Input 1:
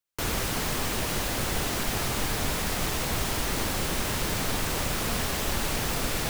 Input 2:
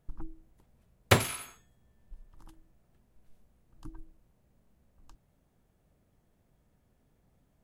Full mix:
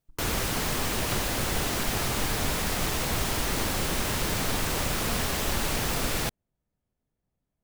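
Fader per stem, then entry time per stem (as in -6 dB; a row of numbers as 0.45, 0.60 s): +0.5, -13.5 dB; 0.00, 0.00 s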